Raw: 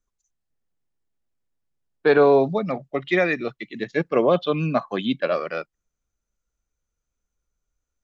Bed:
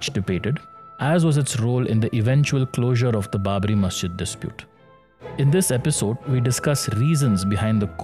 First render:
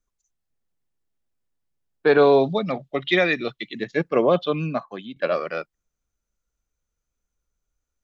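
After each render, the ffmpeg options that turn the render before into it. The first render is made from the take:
-filter_complex "[0:a]asettb=1/sr,asplit=3[s0][s1][s2];[s0]atrim=end=2.184[s3];[s1]atrim=start=2.18:end=3.74,asetpts=PTS-STARTPTS,afade=t=in:d=0.004:c=qsin,afade=t=out:st=1.556:d=0.004:c=qsin,equalizer=f=3500:t=o:w=0.65:g=10.5[s4];[s2]atrim=start=3.736[s5];[s3][s4]acrossfade=d=0.004:c1=hsin:c2=qsin[s6];[s6][s5]acrossfade=d=0.004:c1=qsin:c2=hsin,asplit=2[s7][s8];[s7]atrim=end=5.16,asetpts=PTS-STARTPTS,afade=t=out:st=4.43:d=0.73:silence=0.133352[s9];[s8]atrim=start=5.16,asetpts=PTS-STARTPTS,afade=t=in:d=0.004:c=hsin:silence=0.133352[s10];[s9][s10]concat=n=2:v=0:a=1"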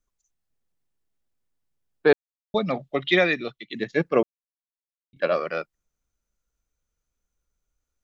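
-filter_complex "[0:a]asplit=6[s0][s1][s2][s3][s4][s5];[s0]atrim=end=2.13,asetpts=PTS-STARTPTS,afade=t=out:st=2.126:d=0.004:c=hsin[s6];[s1]atrim=start=2.13:end=2.54,asetpts=PTS-STARTPTS,volume=0[s7];[s2]atrim=start=2.54:end=3.7,asetpts=PTS-STARTPTS,afade=t=in:d=0.004:c=hsin,afade=t=out:st=0.66:d=0.5:silence=0.266073[s8];[s3]atrim=start=3.7:end=4.23,asetpts=PTS-STARTPTS,afade=t=in:d=0.004:c=hsin:silence=0.266073,afade=t=out:st=0.526:d=0.004:c=hsin[s9];[s4]atrim=start=4.23:end=5.13,asetpts=PTS-STARTPTS,volume=0[s10];[s5]atrim=start=5.13,asetpts=PTS-STARTPTS,afade=t=in:d=0.004:c=hsin[s11];[s6][s7][s8][s9][s10][s11]concat=n=6:v=0:a=1"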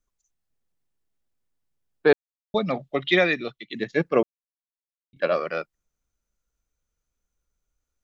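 -af anull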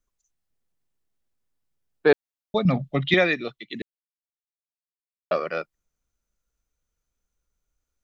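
-filter_complex "[0:a]asettb=1/sr,asplit=3[s0][s1][s2];[s0]atrim=end=2.654[s3];[s1]atrim=start=2.65:end=3.14,asetpts=PTS-STARTPTS,afade=t=in:d=0.004:c=qsin,afade=t=out:st=0.486:d=0.004:c=qsin,lowshelf=f=260:t=q:w=1.5:g=10.5[s4];[s2]atrim=start=3.136[s5];[s3][s4]acrossfade=d=0.004:c1=hsin:c2=qsin[s6];[s6][s5]acrossfade=d=0.004:c1=qsin:c2=hsin,asplit=3[s7][s8][s9];[s7]atrim=end=3.82,asetpts=PTS-STARTPTS,afade=t=out:st=3.816:d=0.004:c=hsin[s10];[s8]atrim=start=3.82:end=5.31,asetpts=PTS-STARTPTS,volume=0[s11];[s9]atrim=start=5.31,asetpts=PTS-STARTPTS,afade=t=in:d=0.004:c=hsin[s12];[s10][s11][s12]concat=n=3:v=0:a=1"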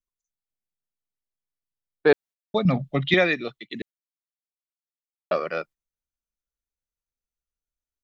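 -af "agate=range=0.178:threshold=0.00794:ratio=16:detection=peak"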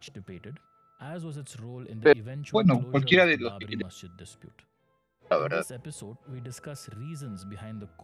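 -filter_complex "[1:a]volume=0.1[s0];[0:a][s0]amix=inputs=2:normalize=0"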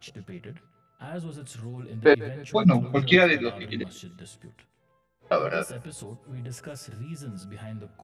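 -filter_complex "[0:a]asplit=2[s0][s1];[s1]adelay=17,volume=0.668[s2];[s0][s2]amix=inputs=2:normalize=0,aecho=1:1:147|294|441:0.0841|0.0353|0.0148"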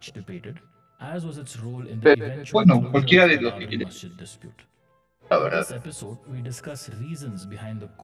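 -af "volume=1.58,alimiter=limit=0.708:level=0:latency=1"

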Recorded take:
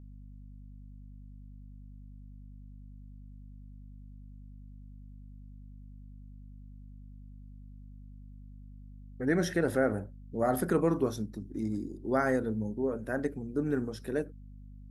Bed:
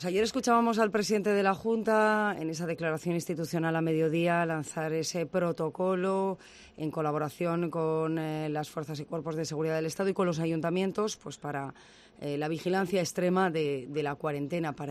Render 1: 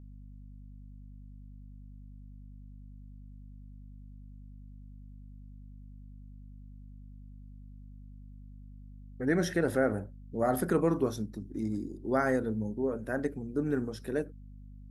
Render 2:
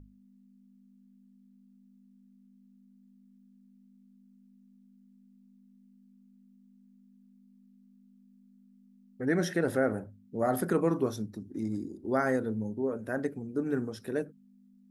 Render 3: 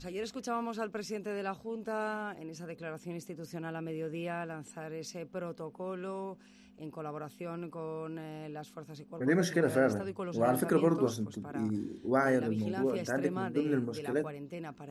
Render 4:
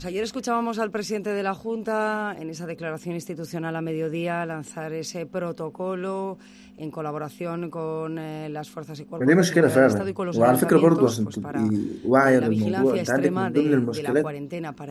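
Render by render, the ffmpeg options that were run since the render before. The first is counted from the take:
-af anull
-af "bandreject=f=50:t=h:w=6,bandreject=f=100:t=h:w=6,bandreject=f=150:t=h:w=6"
-filter_complex "[1:a]volume=0.299[s0];[0:a][s0]amix=inputs=2:normalize=0"
-af "volume=3.35"

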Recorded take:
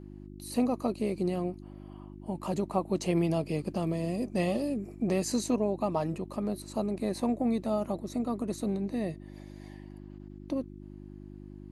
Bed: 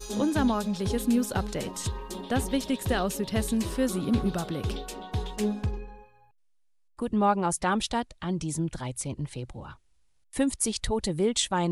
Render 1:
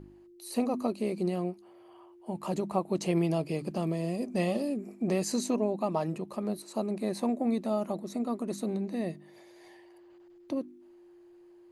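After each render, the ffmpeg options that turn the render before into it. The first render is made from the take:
-af "bandreject=f=50:t=h:w=4,bandreject=f=100:t=h:w=4,bandreject=f=150:t=h:w=4,bandreject=f=200:t=h:w=4,bandreject=f=250:t=h:w=4,bandreject=f=300:t=h:w=4"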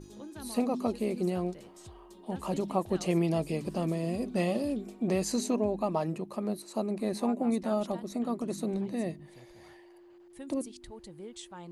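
-filter_complex "[1:a]volume=0.106[s0];[0:a][s0]amix=inputs=2:normalize=0"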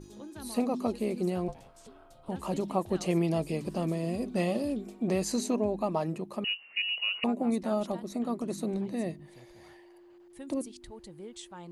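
-filter_complex "[0:a]asettb=1/sr,asplit=3[s0][s1][s2];[s0]atrim=end=1.484[s3];[s1]atrim=start=1.48:end=2.29,asetpts=PTS-STARTPTS,afade=t=in:d=0.004:c=qsin,afade=t=out:st=0.806:d=0.004:c=qsin,aeval=exprs='val(0)*sin(2*PI*330*n/s)':c=same[s4];[s2]atrim=start=2.286[s5];[s3][s4]acrossfade=d=0.004:c1=hsin:c2=qsin[s6];[s6][s5]acrossfade=d=0.004:c1=qsin:c2=hsin,asettb=1/sr,asplit=3[s7][s8][s9];[s7]atrim=end=6.444[s10];[s8]atrim=start=6.44:end=7.24,asetpts=PTS-STARTPTS,afade=t=in:d=0.004:c=qsin,afade=t=out:st=0.796:d=0.004:c=qsin,lowpass=f=2600:t=q:w=0.5098,lowpass=f=2600:t=q:w=0.6013,lowpass=f=2600:t=q:w=0.9,lowpass=f=2600:t=q:w=2.563,afreqshift=-3100[s11];[s9]atrim=start=7.236[s12];[s10][s11]acrossfade=d=0.004:c1=hsin:c2=qsin[s13];[s13][s12]acrossfade=d=0.004:c1=qsin:c2=hsin"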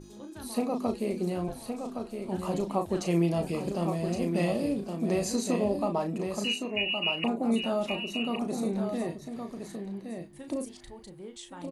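-filter_complex "[0:a]asplit=2[s0][s1];[s1]adelay=35,volume=0.447[s2];[s0][s2]amix=inputs=2:normalize=0,aecho=1:1:1116:0.473"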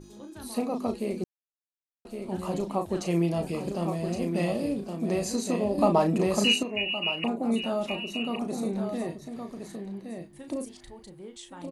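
-filter_complex "[0:a]asplit=5[s0][s1][s2][s3][s4];[s0]atrim=end=1.24,asetpts=PTS-STARTPTS,afade=t=out:st=1.236:d=0.004:c=hsin[s5];[s1]atrim=start=1.24:end=2.05,asetpts=PTS-STARTPTS,volume=0[s6];[s2]atrim=start=2.05:end=5.782,asetpts=PTS-STARTPTS,afade=t=in:d=0.004:c=hsin[s7];[s3]atrim=start=5.778:end=6.632,asetpts=PTS-STARTPTS,volume=2.37[s8];[s4]atrim=start=6.628[s9];[s5][s6][s7]concat=n=3:v=0:a=1[s10];[s10][s8]acrossfade=d=0.004:c1=hsin:c2=hsin[s11];[s11][s9]acrossfade=d=0.004:c1=hsin:c2=hsin"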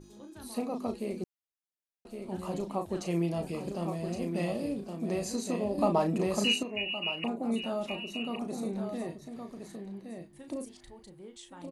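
-af "volume=0.596"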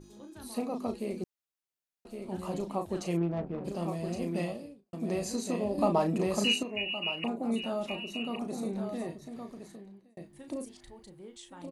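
-filter_complex "[0:a]asplit=3[s0][s1][s2];[s0]afade=t=out:st=3.16:d=0.02[s3];[s1]adynamicsmooth=sensitivity=2.5:basefreq=560,afade=t=in:st=3.16:d=0.02,afade=t=out:st=3.64:d=0.02[s4];[s2]afade=t=in:st=3.64:d=0.02[s5];[s3][s4][s5]amix=inputs=3:normalize=0,asplit=3[s6][s7][s8];[s6]atrim=end=4.93,asetpts=PTS-STARTPTS,afade=t=out:st=4.39:d=0.54:c=qua[s9];[s7]atrim=start=4.93:end=10.17,asetpts=PTS-STARTPTS,afade=t=in:d=0.004:c=hsin,afade=t=out:st=4.53:d=0.71[s10];[s8]atrim=start=10.17,asetpts=PTS-STARTPTS,afade=t=in:d=0.004:c=hsin[s11];[s9][s10][s11]concat=n=3:v=0:a=1"

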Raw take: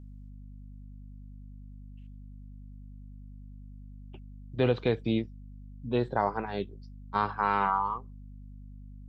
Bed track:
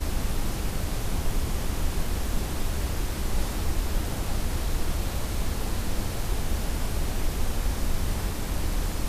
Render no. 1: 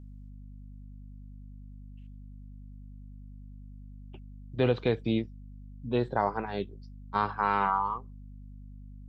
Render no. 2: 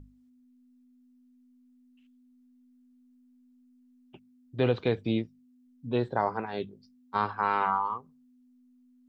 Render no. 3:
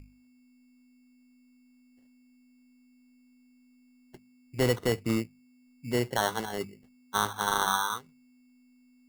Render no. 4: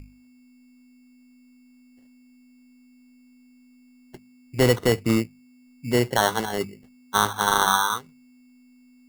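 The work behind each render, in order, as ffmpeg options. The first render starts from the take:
-af anull
-af "bandreject=f=50:t=h:w=6,bandreject=f=100:t=h:w=6,bandreject=f=150:t=h:w=6,bandreject=f=200:t=h:w=6"
-af "acrusher=samples=18:mix=1:aa=0.000001,volume=6.31,asoftclip=hard,volume=0.158"
-af "volume=2.24"

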